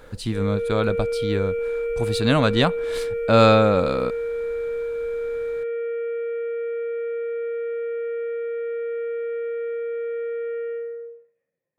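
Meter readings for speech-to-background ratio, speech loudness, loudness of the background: 6.0 dB, -21.5 LUFS, -27.5 LUFS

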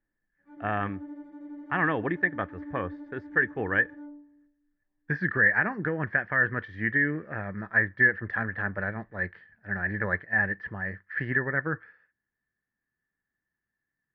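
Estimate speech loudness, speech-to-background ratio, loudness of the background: -27.5 LUFS, 16.5 dB, -44.0 LUFS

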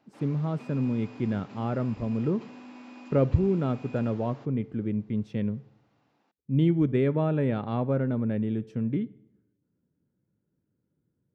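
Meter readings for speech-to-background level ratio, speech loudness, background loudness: 19.0 dB, -28.0 LUFS, -47.0 LUFS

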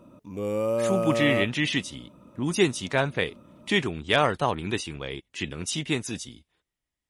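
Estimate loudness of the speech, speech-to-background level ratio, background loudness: -27.0 LUFS, 1.0 dB, -28.0 LUFS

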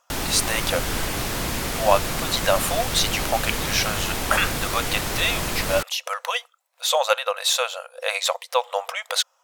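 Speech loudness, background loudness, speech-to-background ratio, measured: -24.0 LUFS, -26.0 LUFS, 2.0 dB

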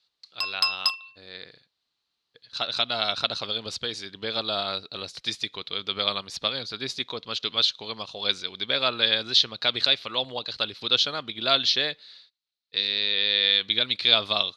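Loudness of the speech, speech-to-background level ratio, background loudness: -24.5 LUFS, 1.0 dB, -25.5 LUFS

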